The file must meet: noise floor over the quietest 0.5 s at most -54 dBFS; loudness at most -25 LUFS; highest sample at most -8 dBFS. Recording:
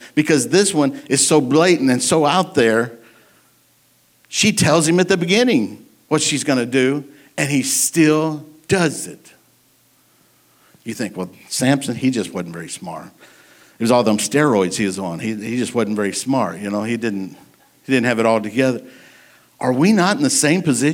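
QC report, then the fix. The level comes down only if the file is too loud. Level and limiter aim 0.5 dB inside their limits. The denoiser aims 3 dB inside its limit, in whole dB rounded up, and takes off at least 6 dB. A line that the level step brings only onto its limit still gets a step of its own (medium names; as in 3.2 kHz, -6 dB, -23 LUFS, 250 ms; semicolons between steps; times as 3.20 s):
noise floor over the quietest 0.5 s -57 dBFS: pass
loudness -17.0 LUFS: fail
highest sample -3.0 dBFS: fail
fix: trim -8.5 dB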